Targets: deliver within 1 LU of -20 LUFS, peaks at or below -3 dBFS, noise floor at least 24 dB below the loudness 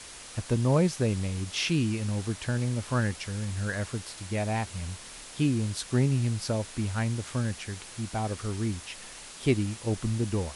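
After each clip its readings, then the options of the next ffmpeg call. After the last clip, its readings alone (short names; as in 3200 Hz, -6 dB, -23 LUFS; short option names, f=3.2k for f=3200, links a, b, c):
noise floor -45 dBFS; noise floor target -54 dBFS; loudness -30.0 LUFS; peak -11.0 dBFS; loudness target -20.0 LUFS
-> -af "afftdn=nr=9:nf=-45"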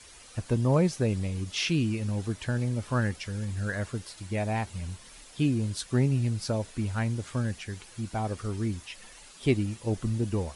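noise floor -51 dBFS; noise floor target -54 dBFS
-> -af "afftdn=nr=6:nf=-51"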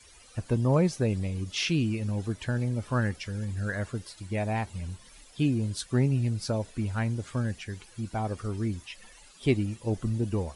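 noise floor -54 dBFS; loudness -30.0 LUFS; peak -11.0 dBFS; loudness target -20.0 LUFS
-> -af "volume=10dB,alimiter=limit=-3dB:level=0:latency=1"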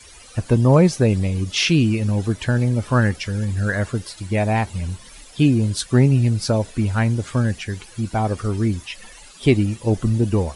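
loudness -20.0 LUFS; peak -3.0 dBFS; noise floor -44 dBFS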